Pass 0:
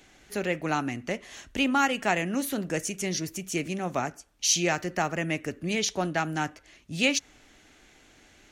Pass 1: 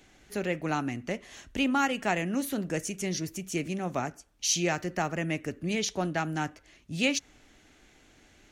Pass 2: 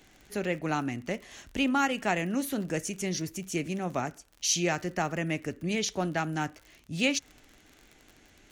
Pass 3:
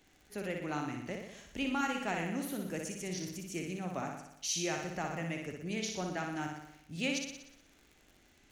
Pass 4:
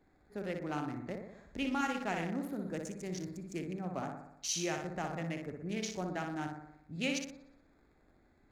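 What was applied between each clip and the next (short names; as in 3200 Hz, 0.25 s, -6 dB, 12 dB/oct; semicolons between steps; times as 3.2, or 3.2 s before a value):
low shelf 380 Hz +4 dB; gain -3.5 dB
crackle 48/s -40 dBFS
flutter echo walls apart 10.3 m, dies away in 0.81 s; gain -8.5 dB
Wiener smoothing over 15 samples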